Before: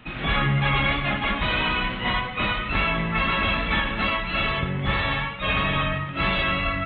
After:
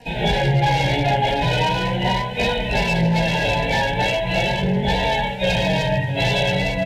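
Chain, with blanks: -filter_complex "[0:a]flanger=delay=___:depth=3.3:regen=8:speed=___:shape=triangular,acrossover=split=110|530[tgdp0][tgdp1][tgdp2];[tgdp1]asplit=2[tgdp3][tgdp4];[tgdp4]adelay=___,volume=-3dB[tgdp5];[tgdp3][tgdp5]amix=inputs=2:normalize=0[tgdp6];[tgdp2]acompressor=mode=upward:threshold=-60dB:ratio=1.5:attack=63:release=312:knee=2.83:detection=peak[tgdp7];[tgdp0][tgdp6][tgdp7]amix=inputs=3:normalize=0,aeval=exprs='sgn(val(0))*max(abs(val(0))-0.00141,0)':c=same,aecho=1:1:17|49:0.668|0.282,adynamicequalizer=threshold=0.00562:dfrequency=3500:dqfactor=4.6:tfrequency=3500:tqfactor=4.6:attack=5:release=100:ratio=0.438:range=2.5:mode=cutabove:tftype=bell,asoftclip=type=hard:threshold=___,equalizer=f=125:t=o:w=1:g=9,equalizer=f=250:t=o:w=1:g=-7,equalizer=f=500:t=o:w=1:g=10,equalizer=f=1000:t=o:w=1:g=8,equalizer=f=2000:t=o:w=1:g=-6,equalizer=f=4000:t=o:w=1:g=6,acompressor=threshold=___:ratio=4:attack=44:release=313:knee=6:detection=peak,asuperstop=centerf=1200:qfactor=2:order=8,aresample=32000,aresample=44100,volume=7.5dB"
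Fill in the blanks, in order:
4.2, 0.4, 31, -21.5dB, -23dB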